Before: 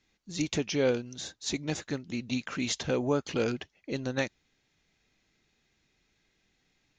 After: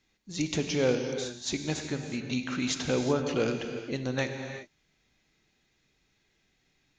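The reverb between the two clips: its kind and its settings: gated-style reverb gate 410 ms flat, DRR 5 dB

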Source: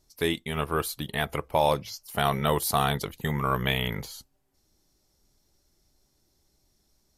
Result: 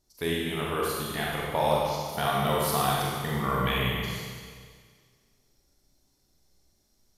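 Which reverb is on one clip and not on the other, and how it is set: Schroeder reverb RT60 1.8 s, combs from 32 ms, DRR -4 dB; trim -5.5 dB

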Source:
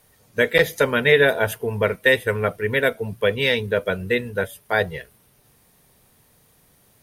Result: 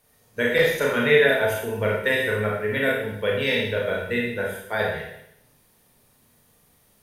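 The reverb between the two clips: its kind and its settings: Schroeder reverb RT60 0.76 s, combs from 26 ms, DRR -3 dB; trim -7 dB

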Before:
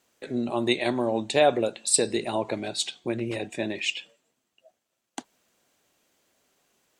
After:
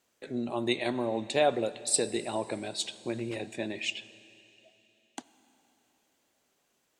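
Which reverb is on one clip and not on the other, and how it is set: algorithmic reverb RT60 3.3 s, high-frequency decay 1×, pre-delay 15 ms, DRR 16.5 dB; trim -5 dB

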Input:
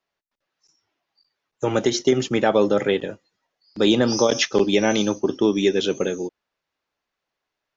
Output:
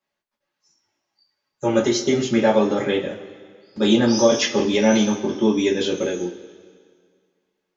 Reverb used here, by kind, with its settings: two-slope reverb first 0.21 s, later 1.9 s, from -20 dB, DRR -5.5 dB; trim -6 dB

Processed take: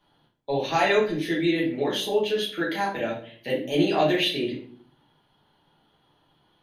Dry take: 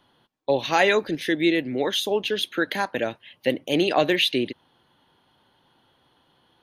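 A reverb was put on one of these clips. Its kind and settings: simulated room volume 55 m³, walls mixed, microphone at 1.3 m; trim -9.5 dB

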